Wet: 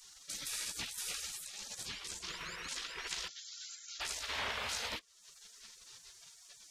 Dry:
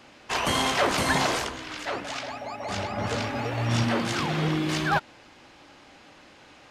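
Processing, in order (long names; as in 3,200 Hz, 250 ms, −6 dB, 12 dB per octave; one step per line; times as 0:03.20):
0:03.28–0:04.01: linear-phase brick-wall band-pass 1,400–7,500 Hz
downward compressor 5 to 1, threshold −38 dBFS, peak gain reduction 17 dB
gate on every frequency bin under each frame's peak −20 dB weak
level +11 dB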